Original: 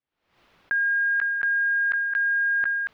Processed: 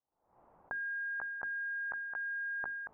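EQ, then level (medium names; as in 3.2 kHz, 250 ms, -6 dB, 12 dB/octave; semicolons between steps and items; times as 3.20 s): four-pole ladder low-pass 1 kHz, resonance 50%; hum notches 50/100/150/200/250/300/350/400 Hz; +6.5 dB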